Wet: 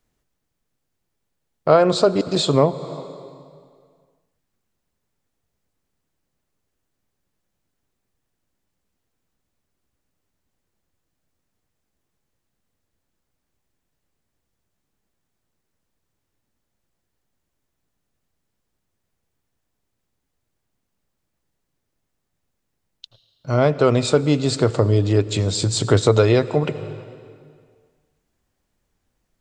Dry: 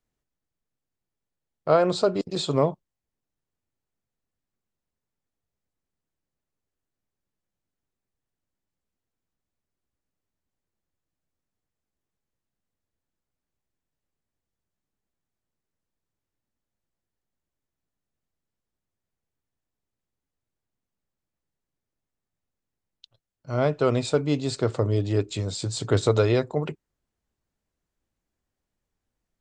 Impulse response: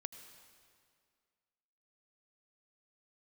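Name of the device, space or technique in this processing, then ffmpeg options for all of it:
compressed reverb return: -filter_complex "[0:a]asplit=2[link_01][link_02];[1:a]atrim=start_sample=2205[link_03];[link_02][link_03]afir=irnorm=-1:irlink=0,acompressor=threshold=-31dB:ratio=6,volume=5.5dB[link_04];[link_01][link_04]amix=inputs=2:normalize=0,volume=3dB"

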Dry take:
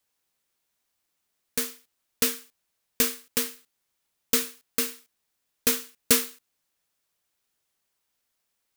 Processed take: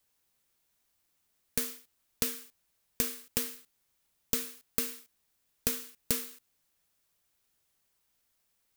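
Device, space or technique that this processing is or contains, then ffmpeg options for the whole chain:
ASMR close-microphone chain: -af "lowshelf=frequency=160:gain=7.5,acompressor=threshold=-29dB:ratio=8,highshelf=frequency=10000:gain=4"

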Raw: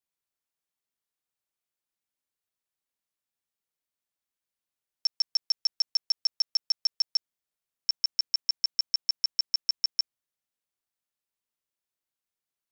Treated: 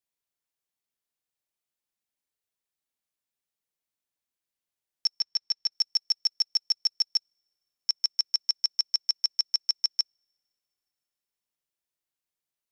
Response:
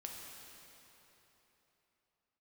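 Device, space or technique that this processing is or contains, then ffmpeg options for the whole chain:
keyed gated reverb: -filter_complex "[0:a]asplit=3[link_01][link_02][link_03];[1:a]atrim=start_sample=2205[link_04];[link_02][link_04]afir=irnorm=-1:irlink=0[link_05];[link_03]apad=whole_len=560931[link_06];[link_05][link_06]sidechaingate=range=-35dB:threshold=-22dB:ratio=16:detection=peak,volume=-4.5dB[link_07];[link_01][link_07]amix=inputs=2:normalize=0,asettb=1/sr,asplit=3[link_08][link_09][link_10];[link_08]atrim=end=5.204[link_11];[link_09]atrim=start=5.2:end=5.72,asetpts=PTS-STARTPTS,afade=type=in:duration=0.004:curve=qsin,afade=type=out:start_time=0.516:duration=0.004:curve=qsin,lowpass=5800[link_12];[link_10]atrim=start=5.716[link_13];[link_11][link_12]acrossfade=duration=0.004:curve1=hsin:curve2=qsin[link_14];[link_14][link_13]acrossfade=duration=0.004:curve1=qsin:curve2=hsin,equalizer=frequency=1300:width_type=o:width=0.77:gain=-2.5"

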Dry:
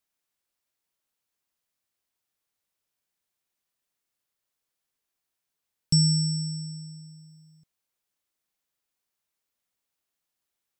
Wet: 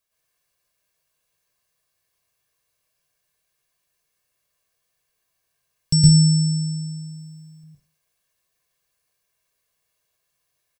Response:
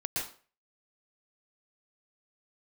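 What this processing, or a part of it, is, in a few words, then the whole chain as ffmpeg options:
microphone above a desk: -filter_complex "[0:a]aecho=1:1:1.8:0.54[link_01];[1:a]atrim=start_sample=2205[link_02];[link_01][link_02]afir=irnorm=-1:irlink=0,volume=4dB"

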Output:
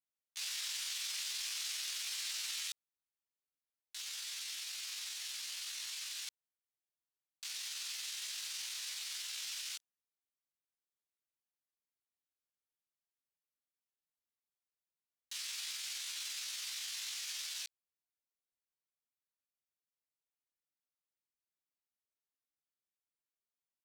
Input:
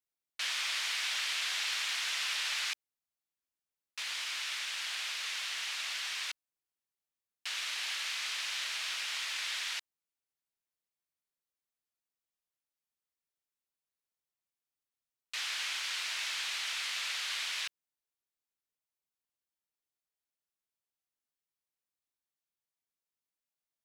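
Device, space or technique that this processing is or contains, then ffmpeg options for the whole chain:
chipmunk voice: -af "asetrate=68011,aresample=44100,atempo=0.64842,volume=-5.5dB"

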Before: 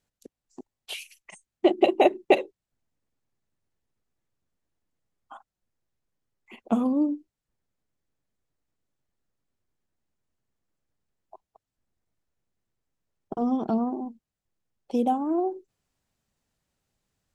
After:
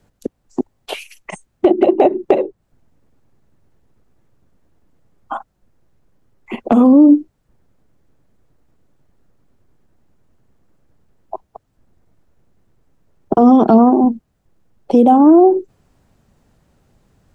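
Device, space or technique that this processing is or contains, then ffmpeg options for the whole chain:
mastering chain: -filter_complex "[0:a]asettb=1/sr,asplit=3[link_01][link_02][link_03];[link_01]atrim=end=13.344[link_04];[link_02]atrim=start=13.34:end=14.04,asetpts=PTS-STARTPTS,afade=type=in:duration=0.004:curve=qsin,afade=type=out:start_time=0.696:duration=0.004:curve=qsin,tiltshelf=frequency=970:gain=-4[link_05];[link_03]atrim=start=14.036[link_06];[link_04][link_05]acrossfade=duration=0.004:curve1=hsin:curve2=qsin[link_07];[link_07][link_06]acrossfade=duration=0.004:curve1=qsin:curve2=hsin,equalizer=frequency=1400:width_type=o:width=0.77:gain=1.5,acrossover=split=220|1600[link_08][link_09][link_10];[link_08]acompressor=threshold=-44dB:ratio=4[link_11];[link_09]acompressor=threshold=-24dB:ratio=4[link_12];[link_10]acompressor=threshold=-44dB:ratio=4[link_13];[link_11][link_12][link_13]amix=inputs=3:normalize=0,acompressor=threshold=-28dB:ratio=2,tiltshelf=frequency=1300:gain=7,asoftclip=type=hard:threshold=-13.5dB,alimiter=level_in=19dB:limit=-1dB:release=50:level=0:latency=1,volume=-1dB"

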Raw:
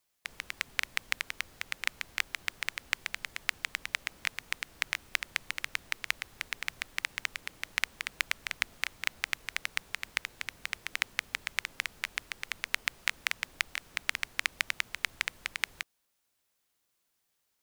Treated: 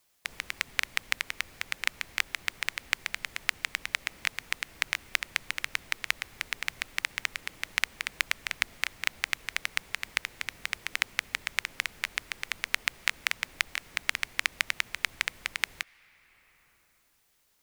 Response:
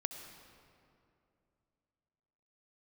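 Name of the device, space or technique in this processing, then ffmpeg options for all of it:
ducked reverb: -filter_complex "[0:a]asplit=3[link_01][link_02][link_03];[1:a]atrim=start_sample=2205[link_04];[link_02][link_04]afir=irnorm=-1:irlink=0[link_05];[link_03]apad=whole_len=777201[link_06];[link_05][link_06]sidechaincompress=threshold=-42dB:ratio=16:attack=12:release=718,volume=1dB[link_07];[link_01][link_07]amix=inputs=2:normalize=0,volume=2dB"

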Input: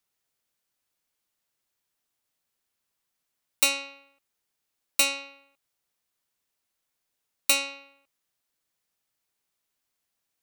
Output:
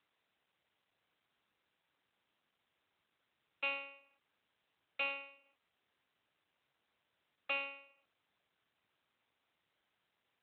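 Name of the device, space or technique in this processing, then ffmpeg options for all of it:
telephone: -af "highpass=400,lowpass=3500,asoftclip=type=tanh:threshold=-22.5dB,volume=-5.5dB" -ar 8000 -c:a libopencore_amrnb -b:a 12200

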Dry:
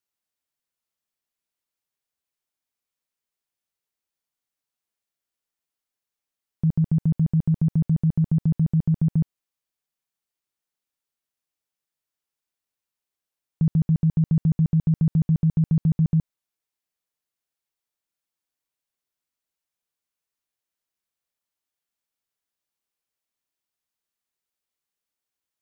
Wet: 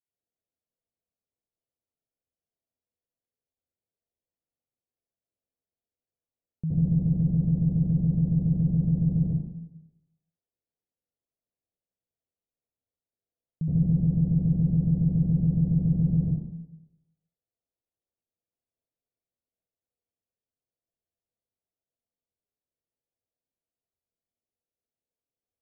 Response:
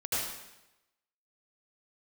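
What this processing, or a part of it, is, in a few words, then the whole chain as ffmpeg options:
next room: -filter_complex "[0:a]lowpass=frequency=650:width=0.5412,lowpass=frequency=650:width=1.3066[link_01];[1:a]atrim=start_sample=2205[link_02];[link_01][link_02]afir=irnorm=-1:irlink=0,volume=-5dB"

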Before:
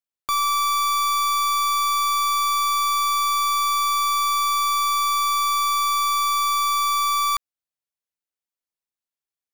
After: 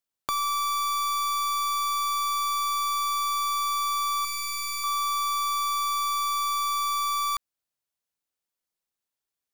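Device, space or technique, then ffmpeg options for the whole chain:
de-esser from a sidechain: -filter_complex "[0:a]asettb=1/sr,asplit=3[link_01][link_02][link_03];[link_01]atrim=end=4.244[link_04];[link_02]atrim=start=4.24:end=4.84,asetpts=PTS-STARTPTS,afade=type=in:duration=0.004:curve=qsin,afade=type=out:start_time=0.596:duration=0.004:curve=qsin,aecho=1:1:5.6:0.7,atrim=end_sample=26460[link_05];[link_03]atrim=start=4.836[link_06];[link_04][link_05]acrossfade=duration=0.004:curve1=hsin:curve2=qsin[link_07];[link_07][link_06]acrossfade=duration=0.004:curve1=qsin:curve2=hsin,equalizer=frequency=2200:width_type=o:width=0.77:gain=-2,asplit=2[link_08][link_09];[link_09]highpass=5300,apad=whole_len=420469[link_10];[link_08][link_10]sidechaincompress=threshold=-34dB:ratio=8:attack=1.8:release=25,volume=4dB"

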